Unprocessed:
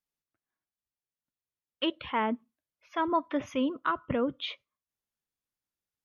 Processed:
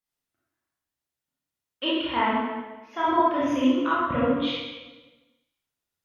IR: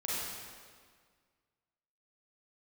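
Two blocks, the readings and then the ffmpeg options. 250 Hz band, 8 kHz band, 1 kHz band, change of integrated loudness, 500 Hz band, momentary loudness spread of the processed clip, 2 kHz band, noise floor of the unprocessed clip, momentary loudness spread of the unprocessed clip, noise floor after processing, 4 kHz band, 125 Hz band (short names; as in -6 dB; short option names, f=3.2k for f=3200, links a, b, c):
+7.5 dB, n/a, +7.5 dB, +7.0 dB, +6.0 dB, 13 LU, +6.5 dB, under -85 dBFS, 9 LU, under -85 dBFS, +6.5 dB, +6.5 dB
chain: -filter_complex "[1:a]atrim=start_sample=2205,asetrate=66150,aresample=44100[a];[0:a][a]afir=irnorm=-1:irlink=0,volume=5dB"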